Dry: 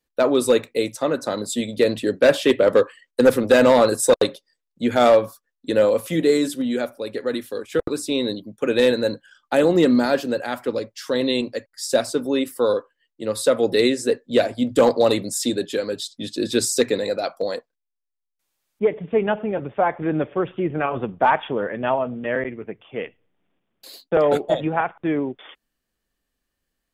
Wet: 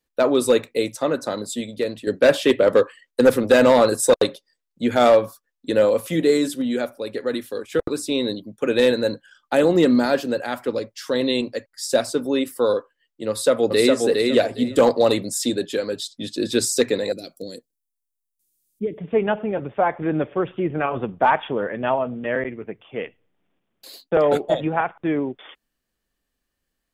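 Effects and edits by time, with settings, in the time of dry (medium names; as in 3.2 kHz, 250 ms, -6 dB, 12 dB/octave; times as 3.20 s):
1.14–2.07 s: fade out, to -10 dB
13.29–13.94 s: echo throw 410 ms, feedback 20%, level -3 dB
17.12–18.98 s: FFT filter 330 Hz 0 dB, 930 Hz -28 dB, 9.5 kHz +9 dB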